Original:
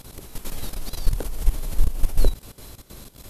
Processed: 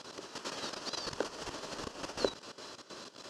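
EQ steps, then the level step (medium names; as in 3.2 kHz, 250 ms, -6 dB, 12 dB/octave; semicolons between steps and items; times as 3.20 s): cabinet simulation 460–5600 Hz, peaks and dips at 480 Hz -3 dB, 760 Hz -7 dB, 2.2 kHz -10 dB, 3.7 kHz -7 dB; +5.0 dB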